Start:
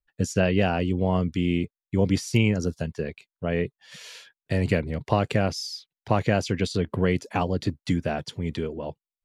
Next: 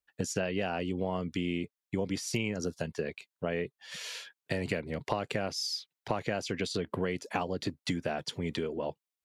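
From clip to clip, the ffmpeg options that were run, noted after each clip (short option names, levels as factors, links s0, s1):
-af "highpass=f=290:p=1,acompressor=threshold=0.0251:ratio=4,volume=1.33"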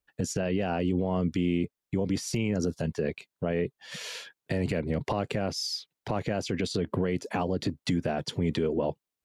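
-af "tiltshelf=f=650:g=4.5,alimiter=level_in=1.06:limit=0.0631:level=0:latency=1:release=32,volume=0.944,volume=2"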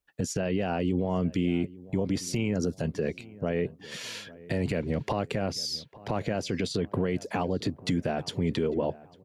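-filter_complex "[0:a]asplit=2[s0][s1];[s1]adelay=849,lowpass=f=1600:p=1,volume=0.106,asplit=2[s2][s3];[s3]adelay=849,lowpass=f=1600:p=1,volume=0.44,asplit=2[s4][s5];[s5]adelay=849,lowpass=f=1600:p=1,volume=0.44[s6];[s0][s2][s4][s6]amix=inputs=4:normalize=0"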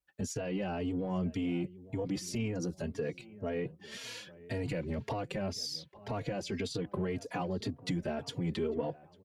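-filter_complex "[0:a]asplit=2[s0][s1];[s1]asoftclip=type=tanh:threshold=0.0447,volume=0.355[s2];[s0][s2]amix=inputs=2:normalize=0,asplit=2[s3][s4];[s4]adelay=3.6,afreqshift=1.9[s5];[s3][s5]amix=inputs=2:normalize=1,volume=0.562"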